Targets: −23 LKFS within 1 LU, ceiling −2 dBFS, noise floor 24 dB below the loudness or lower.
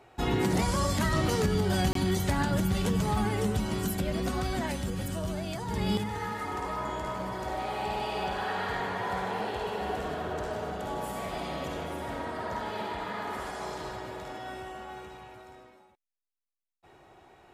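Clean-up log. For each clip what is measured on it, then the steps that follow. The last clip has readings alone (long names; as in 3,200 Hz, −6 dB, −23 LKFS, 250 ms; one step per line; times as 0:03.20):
number of dropouts 1; longest dropout 23 ms; integrated loudness −31.5 LKFS; sample peak −16.0 dBFS; target loudness −23.0 LKFS
→ repair the gap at 0:01.93, 23 ms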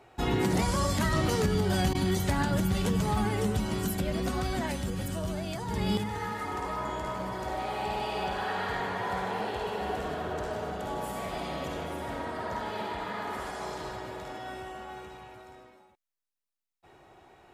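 number of dropouts 0; integrated loudness −31.5 LKFS; sample peak −16.0 dBFS; target loudness −23.0 LKFS
→ level +8.5 dB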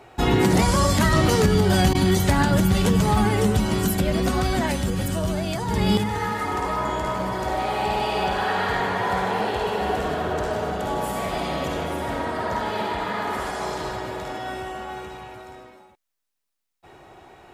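integrated loudness −23.0 LKFS; sample peak −7.5 dBFS; background noise floor −59 dBFS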